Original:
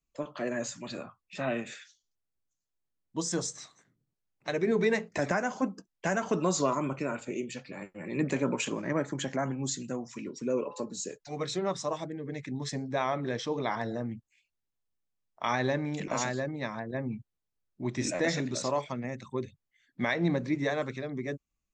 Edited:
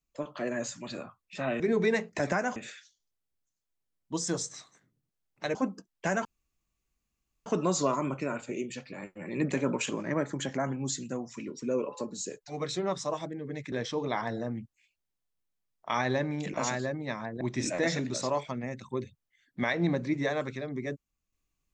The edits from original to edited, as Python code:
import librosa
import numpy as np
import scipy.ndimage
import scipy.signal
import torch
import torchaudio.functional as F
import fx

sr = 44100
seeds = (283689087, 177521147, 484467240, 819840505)

y = fx.edit(x, sr, fx.move(start_s=4.59, length_s=0.96, to_s=1.6),
    fx.insert_room_tone(at_s=6.25, length_s=1.21),
    fx.cut(start_s=12.51, length_s=0.75),
    fx.cut(start_s=16.95, length_s=0.87), tone=tone)